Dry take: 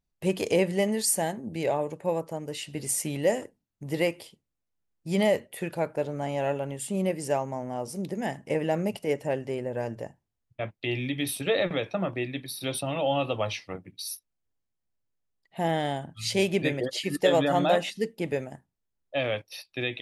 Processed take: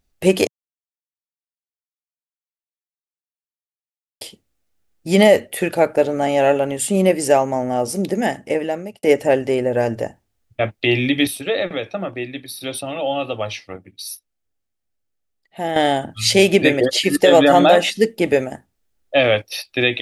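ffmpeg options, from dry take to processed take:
ffmpeg -i in.wav -filter_complex "[0:a]asplit=6[link_01][link_02][link_03][link_04][link_05][link_06];[link_01]atrim=end=0.47,asetpts=PTS-STARTPTS,afade=type=out:start_time=0.466:duration=0.004:curve=hsin[link_07];[link_02]atrim=start=0.47:end=4.21,asetpts=PTS-STARTPTS,volume=0[link_08];[link_03]atrim=start=4.21:end=9.03,asetpts=PTS-STARTPTS,afade=type=in:duration=0.004:curve=hsin,afade=type=out:start_time=3.89:duration=0.93[link_09];[link_04]atrim=start=9.03:end=11.272,asetpts=PTS-STARTPTS,afade=type=in:duration=0.004:curve=hsin[link_10];[link_05]atrim=start=11.268:end=15.762,asetpts=PTS-STARTPTS,volume=-9dB[link_11];[link_06]atrim=start=15.758[link_12];[link_07][link_08][link_09][link_10]concat=n=4:v=0:a=1[link_13];[link_13][link_11]acrossfade=duration=0.004:curve1=hsin:curve2=hsin[link_14];[link_14][link_12]acrossfade=duration=0.004:curve1=hsin:curve2=hsin,equalizer=frequency=150:width=3.9:gain=-13,bandreject=frequency=1000:width=7.1,alimiter=level_in=14.5dB:limit=-1dB:release=50:level=0:latency=1,volume=-1dB" out.wav

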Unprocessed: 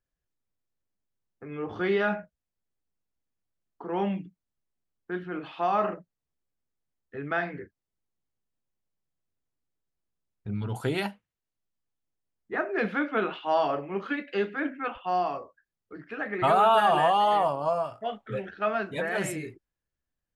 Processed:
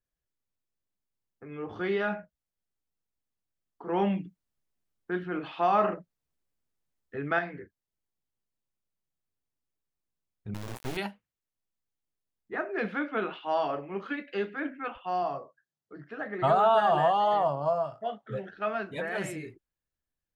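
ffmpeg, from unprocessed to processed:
ffmpeg -i in.wav -filter_complex "[0:a]asettb=1/sr,asplit=3[link_01][link_02][link_03];[link_01]atrim=end=3.874[link_04];[link_02]atrim=start=3.87:end=7.39,asetpts=PTS-STARTPTS,afade=type=in:duration=0.004:curve=qsin,afade=type=out:start_time=3.516:duration=0.004:curve=qsin,acontrast=26[link_05];[link_03]atrim=start=7.386[link_06];[link_04][link_05]acrossfade=duration=0.004:curve1=hsin:curve2=qsin[link_07];[link_07][link_06]acrossfade=duration=0.004:curve1=qsin:curve2=hsin,asettb=1/sr,asplit=3[link_08][link_09][link_10];[link_08]atrim=end=10.544[link_11];[link_09]atrim=start=10.54:end=10.97,asetpts=PTS-STARTPTS,afade=type=in:duration=0.004:curve=qsin,afade=type=out:start_time=0.426:duration=0.004:curve=qsin,acrusher=bits=3:dc=4:mix=0:aa=0.000001[link_12];[link_10]atrim=start=10.966[link_13];[link_11][link_12]acrossfade=duration=0.004:curve1=hsin:curve2=qsin[link_14];[link_14][link_13]acrossfade=duration=0.004:curve1=qsin:curve2=hsin,asettb=1/sr,asplit=3[link_15][link_16][link_17];[link_15]atrim=end=15.224[link_18];[link_16]atrim=start=15.22:end=18.56,asetpts=PTS-STARTPTS,afade=type=in:duration=0.004:curve=qsin,afade=type=out:start_time=3.336:duration=0.004:curve=qsin,highpass=120,equalizer=frequency=140:width_type=q:width=4:gain=10,equalizer=frequency=650:width_type=q:width=4:gain=4,equalizer=frequency=2400:width_type=q:width=4:gain=-9,lowpass=frequency=8100:width=0.5412,lowpass=frequency=8100:width=1.3066[link_19];[link_17]atrim=start=18.556[link_20];[link_18][link_19]acrossfade=duration=0.004:curve1=hsin:curve2=qsin[link_21];[link_21][link_20]acrossfade=duration=0.004:curve1=qsin:curve2=hsin,adynamicequalizer=threshold=0.00316:dfrequency=6600:dqfactor=0.7:tfrequency=6600:tqfactor=0.7:attack=5:release=100:ratio=0.375:range=3.5:mode=cutabove:tftype=highshelf,volume=-3.5dB" out.wav

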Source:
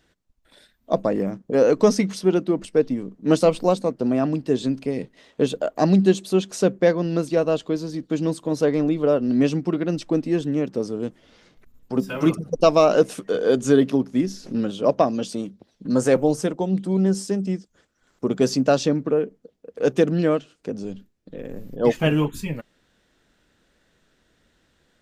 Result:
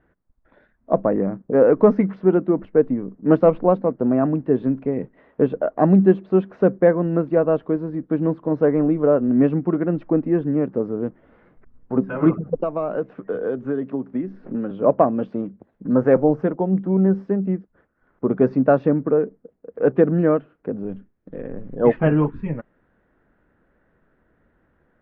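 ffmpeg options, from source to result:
ffmpeg -i in.wav -filter_complex "[0:a]asettb=1/sr,asplit=3[link_01][link_02][link_03];[link_01]atrim=end=12.574[link_04];[link_02]atrim=start=12.57:end=14.71,asetpts=PTS-STARTPTS,afade=type=in:duration=0.004:curve=qsin,afade=type=out:start_time=2.136:duration=0.004:curve=qsin,acrossover=split=180|2900[link_05][link_06][link_07];[link_05]acompressor=threshold=-42dB:ratio=4[link_08];[link_06]acompressor=threshold=-26dB:ratio=4[link_09];[link_07]acompressor=threshold=-42dB:ratio=4[link_10];[link_08][link_09][link_10]amix=inputs=3:normalize=0[link_11];[link_03]atrim=start=14.706[link_12];[link_04][link_11]acrossfade=duration=0.004:curve1=hsin:curve2=qsin[link_13];[link_13][link_12]acrossfade=duration=0.004:curve1=qsin:curve2=hsin,asettb=1/sr,asplit=3[link_14][link_15][link_16];[link_14]atrim=end=18.314[link_17];[link_15]atrim=start=18.31:end=18.83,asetpts=PTS-STARTPTS,afade=type=in:duration=0.004:curve=qsin,afade=type=out:start_time=0.516:duration=0.004:curve=qsin,bandreject=frequency=3100:width=7.7[link_18];[link_16]atrim=start=18.826[link_19];[link_17][link_18]acrossfade=duration=0.004:curve1=hsin:curve2=qsin[link_20];[link_20][link_19]acrossfade=duration=0.004:curve1=qsin:curve2=hsin,asettb=1/sr,asplit=3[link_21][link_22][link_23];[link_21]atrim=end=20.894[link_24];[link_22]atrim=start=20.89:end=21.99,asetpts=PTS-STARTPTS,afade=type=in:duration=0.004:curve=qsin,afade=type=out:start_time=1.096:duration=0.004:curve=qsin,equalizer=frequency=4400:width_type=o:width=2.3:gain=6.5[link_25];[link_23]atrim=start=21.986[link_26];[link_24][link_25]acrossfade=duration=0.004:curve1=hsin:curve2=qsin[link_27];[link_27][link_26]acrossfade=duration=0.004:curve1=qsin:curve2=hsin,lowpass=frequency=1700:width=0.5412,lowpass=frequency=1700:width=1.3066,volume=2.5dB" out.wav

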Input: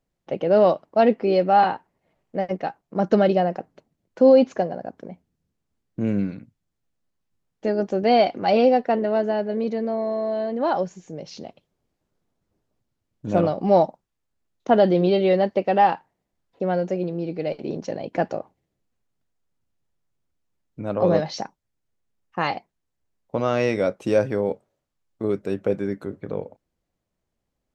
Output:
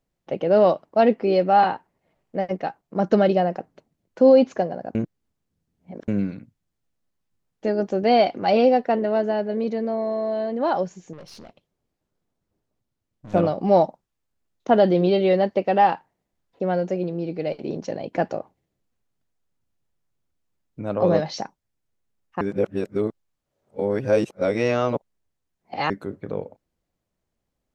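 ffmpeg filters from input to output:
ffmpeg -i in.wav -filter_complex "[0:a]asettb=1/sr,asplit=3[link_01][link_02][link_03];[link_01]atrim=end=11.134[link_04];[link_02]atrim=start=11.13:end=13.34,asetpts=PTS-STARTPTS,afade=type=in:duration=0.004:curve=qsin,afade=type=out:start_time=2.206:duration=0.004:curve=qsin,aeval=exprs='(tanh(79.4*val(0)+0.6)-tanh(0.6))/79.4':channel_layout=same[link_05];[link_03]atrim=start=13.336[link_06];[link_04][link_05]acrossfade=duration=0.004:curve1=hsin:curve2=qsin[link_07];[link_07][link_06]acrossfade=duration=0.004:curve1=qsin:curve2=hsin,asplit=5[link_08][link_09][link_10][link_11][link_12];[link_08]atrim=end=4.952[link_13];[link_09]atrim=start=4.948:end=6.082,asetpts=PTS-STARTPTS,areverse[link_14];[link_10]atrim=start=6.078:end=22.412[link_15];[link_11]atrim=start=22.408:end=25.902,asetpts=PTS-STARTPTS,areverse[link_16];[link_12]atrim=start=25.898[link_17];[link_13][link_14]acrossfade=duration=0.004:curve1=hsin:curve2=hsin[link_18];[link_18][link_15]acrossfade=duration=0.004:curve1=hsin:curve2=hsin[link_19];[link_19][link_16]acrossfade=duration=0.004:curve1=hsin:curve2=hsin[link_20];[link_20][link_17]acrossfade=duration=0.004:curve1=hsin:curve2=hsin" out.wav

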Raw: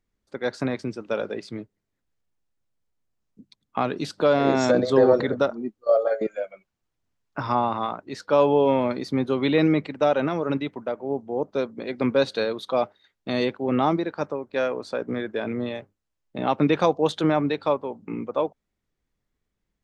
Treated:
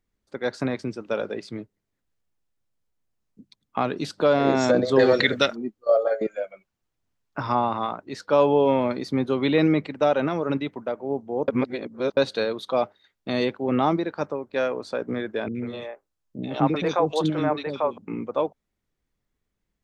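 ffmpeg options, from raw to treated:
ffmpeg -i in.wav -filter_complex "[0:a]asettb=1/sr,asplit=3[link_01][link_02][link_03];[link_01]atrim=end=4.994[link_04];[link_02]atrim=start=4.99:end=5.56,asetpts=PTS-STARTPTS,afade=type=in:duration=0.004:curve=qsin,afade=type=out:start_time=0.566:duration=0.004:curve=qsin,highshelf=frequency=1500:width_type=q:width=1.5:gain=13.5[link_05];[link_03]atrim=start=5.556[link_06];[link_04][link_05]acrossfade=duration=0.004:curve1=hsin:curve2=qsin[link_07];[link_07][link_06]acrossfade=duration=0.004:curve1=qsin:curve2=hsin,asettb=1/sr,asplit=3[link_08][link_09][link_10];[link_08]atrim=end=15.484[link_11];[link_09]atrim=start=15.48:end=17.98,asetpts=PTS-STARTPTS,afade=type=in:duration=0.004:curve=qsin,afade=type=out:start_time=2.496:duration=0.004:curve=qsin,acrossover=split=400|2200[link_12][link_13][link_14];[link_14]adelay=70[link_15];[link_13]adelay=140[link_16];[link_12][link_16][link_15]amix=inputs=3:normalize=0,atrim=end_sample=110250[link_17];[link_10]atrim=start=17.976[link_18];[link_11][link_17]acrossfade=duration=0.004:curve1=hsin:curve2=qsin[link_19];[link_19][link_18]acrossfade=duration=0.004:curve1=qsin:curve2=hsin,asplit=3[link_20][link_21][link_22];[link_20]atrim=end=11.482[link_23];[link_21]atrim=start=11.478:end=12.172,asetpts=PTS-STARTPTS,areverse[link_24];[link_22]atrim=start=12.168[link_25];[link_23][link_24]acrossfade=duration=0.004:curve1=hsin:curve2=hsin[link_26];[link_26][link_25]acrossfade=duration=0.004:curve1=hsin:curve2=hsin" out.wav

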